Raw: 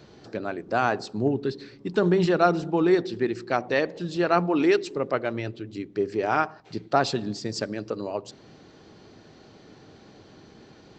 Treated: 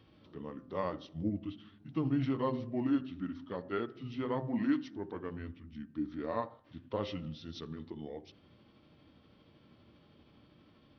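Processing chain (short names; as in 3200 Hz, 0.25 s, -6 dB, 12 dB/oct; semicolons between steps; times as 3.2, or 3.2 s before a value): delay-line pitch shifter -5 st; harmonic-percussive split percussive -7 dB; de-hum 130.2 Hz, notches 14; gain -8 dB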